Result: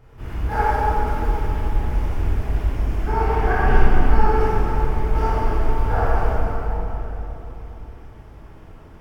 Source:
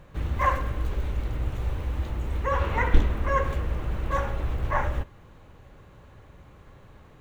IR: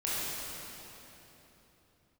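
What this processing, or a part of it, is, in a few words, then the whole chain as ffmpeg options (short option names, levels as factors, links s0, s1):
slowed and reverbed: -filter_complex "[0:a]asetrate=35280,aresample=44100[s0];[1:a]atrim=start_sample=2205[s1];[s0][s1]afir=irnorm=-1:irlink=0,volume=0.841"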